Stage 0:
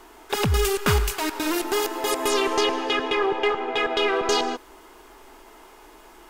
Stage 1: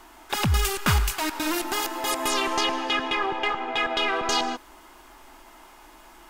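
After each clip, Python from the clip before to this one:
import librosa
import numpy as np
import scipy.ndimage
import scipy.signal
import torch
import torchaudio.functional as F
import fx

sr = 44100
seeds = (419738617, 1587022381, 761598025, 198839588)

y = fx.peak_eq(x, sr, hz=430.0, db=-14.5, octaves=0.33)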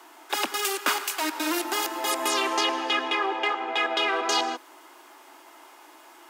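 y = scipy.signal.sosfilt(scipy.signal.butter(8, 280.0, 'highpass', fs=sr, output='sos'), x)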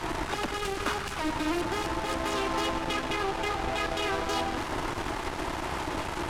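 y = fx.delta_mod(x, sr, bps=64000, step_db=-22.5)
y = fx.riaa(y, sr, side='playback')
y = fx.cheby_harmonics(y, sr, harmonics=(8,), levels_db=(-17,), full_scale_db=-11.5)
y = F.gain(torch.from_numpy(y), -5.5).numpy()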